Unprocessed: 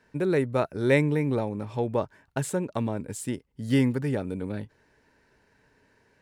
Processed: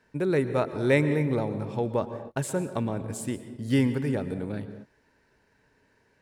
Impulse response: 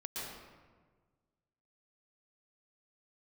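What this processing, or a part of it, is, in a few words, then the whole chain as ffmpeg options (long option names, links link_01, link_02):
keyed gated reverb: -filter_complex "[0:a]asplit=3[link_01][link_02][link_03];[1:a]atrim=start_sample=2205[link_04];[link_02][link_04]afir=irnorm=-1:irlink=0[link_05];[link_03]apad=whole_len=274102[link_06];[link_05][link_06]sidechaingate=range=-33dB:threshold=-57dB:ratio=16:detection=peak,volume=-9.5dB[link_07];[link_01][link_07]amix=inputs=2:normalize=0,volume=-2dB"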